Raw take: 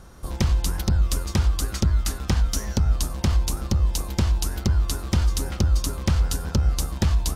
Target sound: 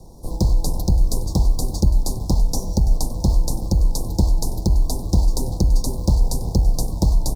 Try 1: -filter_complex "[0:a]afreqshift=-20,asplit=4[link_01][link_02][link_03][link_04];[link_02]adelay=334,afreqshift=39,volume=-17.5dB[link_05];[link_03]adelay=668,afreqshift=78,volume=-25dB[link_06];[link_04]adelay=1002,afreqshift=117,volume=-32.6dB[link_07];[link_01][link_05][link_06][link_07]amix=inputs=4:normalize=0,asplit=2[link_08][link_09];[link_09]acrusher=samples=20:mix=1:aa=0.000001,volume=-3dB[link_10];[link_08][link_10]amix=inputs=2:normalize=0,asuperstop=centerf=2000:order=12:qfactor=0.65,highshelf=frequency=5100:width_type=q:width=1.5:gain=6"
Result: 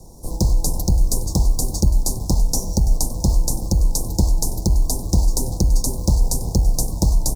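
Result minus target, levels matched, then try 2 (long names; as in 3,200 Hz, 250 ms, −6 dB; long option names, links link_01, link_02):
8,000 Hz band +6.5 dB
-filter_complex "[0:a]afreqshift=-20,asplit=4[link_01][link_02][link_03][link_04];[link_02]adelay=334,afreqshift=39,volume=-17.5dB[link_05];[link_03]adelay=668,afreqshift=78,volume=-25dB[link_06];[link_04]adelay=1002,afreqshift=117,volume=-32.6dB[link_07];[link_01][link_05][link_06][link_07]amix=inputs=4:normalize=0,asplit=2[link_08][link_09];[link_09]acrusher=samples=20:mix=1:aa=0.000001,volume=-3dB[link_10];[link_08][link_10]amix=inputs=2:normalize=0,asuperstop=centerf=2000:order=12:qfactor=0.65"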